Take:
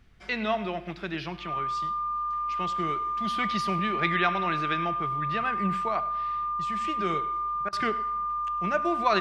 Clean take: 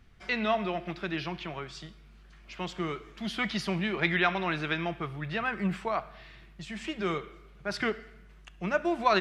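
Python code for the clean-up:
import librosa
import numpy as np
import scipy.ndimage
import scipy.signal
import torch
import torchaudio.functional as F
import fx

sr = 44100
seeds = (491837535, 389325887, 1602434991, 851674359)

y = fx.notch(x, sr, hz=1200.0, q=30.0)
y = fx.fix_interpolate(y, sr, at_s=(7.69,), length_ms=36.0)
y = fx.fix_echo_inverse(y, sr, delay_ms=102, level_db=-19.0)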